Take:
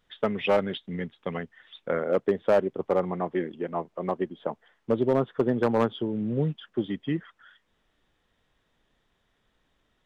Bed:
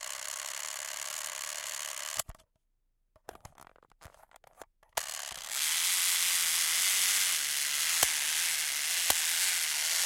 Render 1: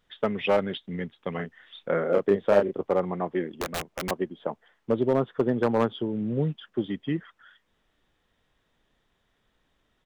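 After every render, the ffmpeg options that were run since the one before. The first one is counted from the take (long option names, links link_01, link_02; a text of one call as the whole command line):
ffmpeg -i in.wav -filter_complex "[0:a]asplit=3[link_01][link_02][link_03];[link_01]afade=type=out:start_time=1.38:duration=0.02[link_04];[link_02]asplit=2[link_05][link_06];[link_06]adelay=30,volume=-3.5dB[link_07];[link_05][link_07]amix=inputs=2:normalize=0,afade=type=in:start_time=1.38:duration=0.02,afade=type=out:start_time=2.81:duration=0.02[link_08];[link_03]afade=type=in:start_time=2.81:duration=0.02[link_09];[link_04][link_08][link_09]amix=inputs=3:normalize=0,asettb=1/sr,asplit=3[link_10][link_11][link_12];[link_10]atrim=end=3.544[link_13];[link_11]atrim=start=3.54:end=4.11,asetpts=PTS-STARTPTS,afade=type=in:duration=0.004:curve=qsin,afade=type=out:start_time=0.566:duration=0.004:curve=qsin,aeval=exprs='(mod(14.1*val(0)+1,2)-1)/14.1':channel_layout=same[link_14];[link_12]atrim=start=4.106[link_15];[link_13][link_14]acrossfade=duration=0.004:curve1=hsin:curve2=qsin[link_16];[link_16][link_15]acrossfade=duration=0.004:curve1=qsin:curve2=hsin" out.wav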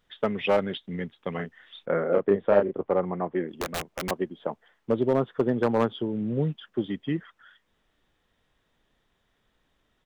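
ffmpeg -i in.wav -filter_complex "[0:a]asplit=3[link_01][link_02][link_03];[link_01]afade=type=out:start_time=1.85:duration=0.02[link_04];[link_02]lowpass=2300,afade=type=in:start_time=1.85:duration=0.02,afade=type=out:start_time=3.47:duration=0.02[link_05];[link_03]afade=type=in:start_time=3.47:duration=0.02[link_06];[link_04][link_05][link_06]amix=inputs=3:normalize=0" out.wav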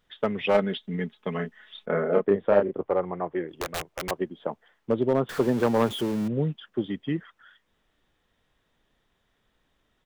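ffmpeg -i in.wav -filter_complex "[0:a]asettb=1/sr,asplit=3[link_01][link_02][link_03];[link_01]atrim=end=0.544[link_04];[link_02]atrim=start=0.54:end=2.25,asetpts=PTS-STARTPTS,afade=type=in:duration=0.004:curve=qsin,afade=type=out:start_time=1.706:duration=0.004:curve=qsin,aecho=1:1:4.7:0.65,atrim=end_sample=75411[link_05];[link_03]atrim=start=2.246[link_06];[link_04][link_05]acrossfade=duration=0.004:curve1=hsin:curve2=qsin[link_07];[link_07][link_06]acrossfade=duration=0.004:curve1=qsin:curve2=hsin,asettb=1/sr,asplit=3[link_08][link_09][link_10];[link_08]atrim=end=2.834[link_11];[link_09]atrim=start=2.83:end=4.21,asetpts=PTS-STARTPTS,afade=type=in:duration=0.004:curve=qsin,afade=type=out:start_time=1.376:duration=0.004:curve=qsin,equalizer=frequency=220:width=3.9:gain=-14.5[link_12];[link_10]atrim=start=4.206[link_13];[link_11][link_12]acrossfade=duration=0.004:curve1=hsin:curve2=qsin[link_14];[link_14][link_13]acrossfade=duration=0.004:curve1=qsin:curve2=hsin,asettb=1/sr,asplit=3[link_15][link_16][link_17];[link_15]atrim=end=5.294[link_18];[link_16]atrim=start=5.29:end=6.28,asetpts=PTS-STARTPTS,afade=type=in:duration=0.004:curve=qsin,afade=type=out:start_time=0.986:duration=0.004:curve=qsin,aeval=exprs='val(0)+0.5*0.0251*sgn(val(0))':channel_layout=same[link_19];[link_17]atrim=start=6.276[link_20];[link_18][link_19]acrossfade=duration=0.004:curve1=hsin:curve2=qsin[link_21];[link_21][link_20]acrossfade=duration=0.004:curve1=qsin:curve2=hsin" out.wav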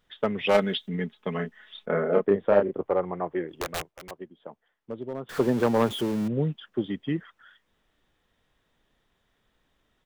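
ffmpeg -i in.wav -filter_complex "[0:a]asettb=1/sr,asplit=3[link_01][link_02][link_03];[link_01]atrim=end=0.464[link_04];[link_02]atrim=start=0.46:end=0.89,asetpts=PTS-STARTPTS,afade=type=in:duration=0.004:curve=qsin,afade=type=out:start_time=0.426:duration=0.004:curve=qsin,highshelf=frequency=3000:gain=10.5[link_05];[link_03]atrim=start=0.886[link_06];[link_04][link_05]acrossfade=duration=0.004:curve1=hsin:curve2=qsin[link_07];[link_07][link_06]acrossfade=duration=0.004:curve1=qsin:curve2=hsin,asplit=3[link_08][link_09][link_10];[link_08]atrim=end=3.92,asetpts=PTS-STARTPTS,afade=type=out:start_time=3.8:duration=0.12:silence=0.266073[link_11];[link_09]atrim=start=3.92:end=5.25,asetpts=PTS-STARTPTS,volume=-11.5dB[link_12];[link_10]atrim=start=5.25,asetpts=PTS-STARTPTS,afade=type=in:duration=0.12:silence=0.266073[link_13];[link_11][link_12][link_13]concat=n=3:v=0:a=1" out.wav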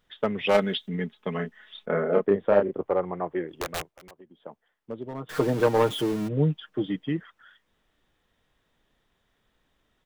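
ffmpeg -i in.wav -filter_complex "[0:a]asettb=1/sr,asplit=3[link_01][link_02][link_03];[link_01]atrim=end=3.884[link_04];[link_02]atrim=start=3.88:end=4.36,asetpts=PTS-STARTPTS,afade=type=in:duration=0.004:curve=qsin,afade=type=out:start_time=0.476:duration=0.004:curve=qsin,acompressor=threshold=-46dB:ratio=5:attack=3.2:release=140:knee=1:detection=peak[link_05];[link_03]atrim=start=4.356[link_06];[link_04][link_05]acrossfade=duration=0.004:curve1=hsin:curve2=qsin[link_07];[link_07][link_06]acrossfade=duration=0.004:curve1=qsin:curve2=hsin,asettb=1/sr,asplit=3[link_08][link_09][link_10];[link_08]atrim=end=5.054[link_11];[link_09]atrim=start=5.05:end=7.04,asetpts=PTS-STARTPTS,afade=type=in:duration=0.004:curve=qsin,afade=type=out:start_time=1.986:duration=0.004:curve=qsin,aecho=1:1:6.5:0.65,atrim=end_sample=87759[link_12];[link_10]atrim=start=7.036[link_13];[link_11][link_12]acrossfade=duration=0.004:curve1=hsin:curve2=qsin[link_14];[link_14][link_13]acrossfade=duration=0.004:curve1=qsin:curve2=hsin" out.wav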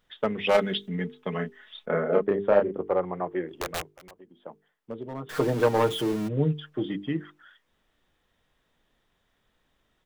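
ffmpeg -i in.wav -af "bandreject=frequency=50:width_type=h:width=6,bandreject=frequency=100:width_type=h:width=6,bandreject=frequency=150:width_type=h:width=6,bandreject=frequency=200:width_type=h:width=6,bandreject=frequency=250:width_type=h:width=6,bandreject=frequency=300:width_type=h:width=6,bandreject=frequency=350:width_type=h:width=6,bandreject=frequency=400:width_type=h:width=6,bandreject=frequency=450:width_type=h:width=6" out.wav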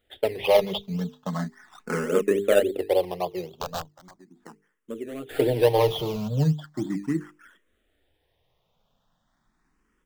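ffmpeg -i in.wav -filter_complex "[0:a]asplit=2[link_01][link_02];[link_02]acrusher=samples=16:mix=1:aa=0.000001:lfo=1:lforange=9.6:lforate=3.6,volume=-4dB[link_03];[link_01][link_03]amix=inputs=2:normalize=0,asplit=2[link_04][link_05];[link_05]afreqshift=0.38[link_06];[link_04][link_06]amix=inputs=2:normalize=1" out.wav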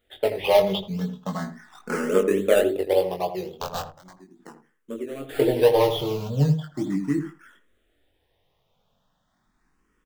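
ffmpeg -i in.wav -filter_complex "[0:a]asplit=2[link_01][link_02];[link_02]adelay=21,volume=-4.5dB[link_03];[link_01][link_03]amix=inputs=2:normalize=0,asplit=2[link_04][link_05];[link_05]adelay=82,lowpass=frequency=880:poles=1,volume=-8dB,asplit=2[link_06][link_07];[link_07]adelay=82,lowpass=frequency=880:poles=1,volume=0.16,asplit=2[link_08][link_09];[link_09]adelay=82,lowpass=frequency=880:poles=1,volume=0.16[link_10];[link_06][link_08][link_10]amix=inputs=3:normalize=0[link_11];[link_04][link_11]amix=inputs=2:normalize=0" out.wav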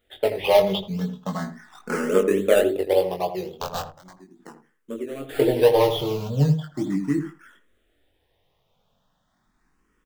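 ffmpeg -i in.wav -af "volume=1dB" out.wav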